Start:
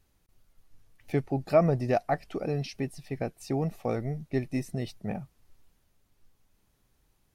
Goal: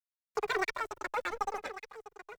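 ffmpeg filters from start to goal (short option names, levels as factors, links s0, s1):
-filter_complex "[0:a]afftfilt=real='re*lt(hypot(re,im),0.631)':imag='im*lt(hypot(re,im),0.631)':win_size=1024:overlap=0.75,acrossover=split=160|2000[s0][s1][s2];[s2]acompressor=threshold=0.00112:ratio=6[s3];[s0][s1][s3]amix=inputs=3:normalize=0,asetrate=135828,aresample=44100,aeval=exprs='sgn(val(0))*max(abs(val(0))-0.0075,0)':c=same,asplit=2[s4][s5];[s5]aecho=0:1:1149:0.211[s6];[s4][s6]amix=inputs=2:normalize=0,asplit=2[s7][s8];[s8]adelay=2,afreqshift=-0.56[s9];[s7][s9]amix=inputs=2:normalize=1,volume=1.12"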